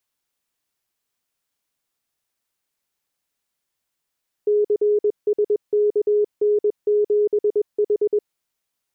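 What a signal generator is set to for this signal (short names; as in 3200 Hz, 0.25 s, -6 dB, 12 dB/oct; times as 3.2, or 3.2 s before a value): Morse "CSKN7H" 21 wpm 417 Hz -14.5 dBFS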